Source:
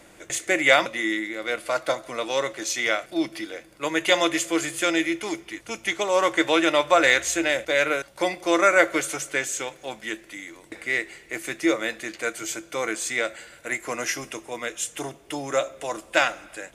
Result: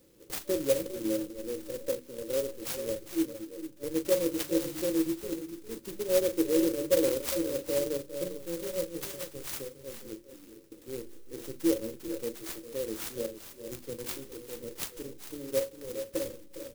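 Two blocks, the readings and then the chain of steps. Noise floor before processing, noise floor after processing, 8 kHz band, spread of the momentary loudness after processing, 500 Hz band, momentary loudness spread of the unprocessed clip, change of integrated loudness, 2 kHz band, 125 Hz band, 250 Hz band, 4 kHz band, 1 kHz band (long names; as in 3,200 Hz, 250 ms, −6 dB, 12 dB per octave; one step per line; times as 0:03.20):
−51 dBFS, −53 dBFS, −9.5 dB, 15 LU, −5.5 dB, 15 LU, −8.5 dB, −24.0 dB, −2.0 dB, −4.5 dB, −14.0 dB, −23.5 dB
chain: gain on a spectral selection 0:08.23–0:09.51, 220–3,200 Hz −8 dB
in parallel at −3 dB: slack as between gear wheels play −17 dBFS
on the sum: mains-hum notches 50/100/150/200/250/300/350 Hz
on a send: multi-tap delay 40/406/441 ms −11/−13/−11.5 dB
on the sum: brick-wall band-stop 580–4,900 Hz
converter with an unsteady clock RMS 0.082 ms
level −7.5 dB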